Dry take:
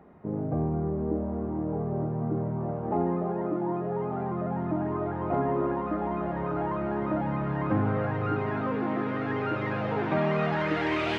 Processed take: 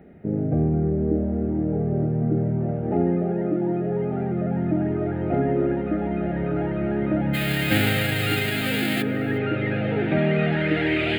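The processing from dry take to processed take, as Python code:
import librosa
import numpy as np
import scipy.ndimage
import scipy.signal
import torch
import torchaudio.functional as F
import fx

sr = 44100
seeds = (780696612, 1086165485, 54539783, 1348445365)

y = fx.envelope_flatten(x, sr, power=0.3, at=(7.33, 9.01), fade=0.02)
y = fx.fixed_phaser(y, sr, hz=2500.0, stages=4)
y = y + 10.0 ** (-21.5 / 20.0) * np.pad(y, (int(360 * sr / 1000.0), 0))[:len(y)]
y = y * librosa.db_to_amplitude(7.5)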